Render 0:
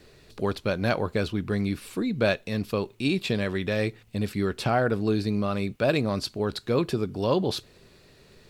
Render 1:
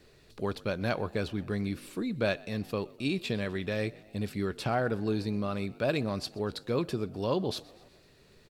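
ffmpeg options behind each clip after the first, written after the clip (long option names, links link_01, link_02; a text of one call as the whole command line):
ffmpeg -i in.wav -filter_complex "[0:a]asplit=5[link_01][link_02][link_03][link_04][link_05];[link_02]adelay=125,afreqshift=52,volume=-23dB[link_06];[link_03]adelay=250,afreqshift=104,volume=-27.3dB[link_07];[link_04]adelay=375,afreqshift=156,volume=-31.6dB[link_08];[link_05]adelay=500,afreqshift=208,volume=-35.9dB[link_09];[link_01][link_06][link_07][link_08][link_09]amix=inputs=5:normalize=0,volume=-5.5dB" out.wav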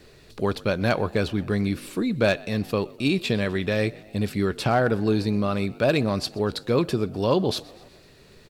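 ffmpeg -i in.wav -af "asoftclip=type=hard:threshold=-19.5dB,volume=8dB" out.wav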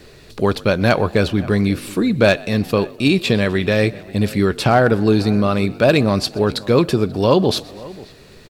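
ffmpeg -i in.wav -filter_complex "[0:a]asplit=2[link_01][link_02];[link_02]adelay=536.4,volume=-20dB,highshelf=frequency=4000:gain=-12.1[link_03];[link_01][link_03]amix=inputs=2:normalize=0,volume=7.5dB" out.wav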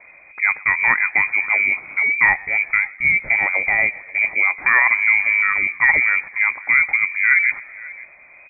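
ffmpeg -i in.wav -af "lowpass=frequency=2100:width_type=q:width=0.5098,lowpass=frequency=2100:width_type=q:width=0.6013,lowpass=frequency=2100:width_type=q:width=0.9,lowpass=frequency=2100:width_type=q:width=2.563,afreqshift=-2500,volume=-1.5dB" out.wav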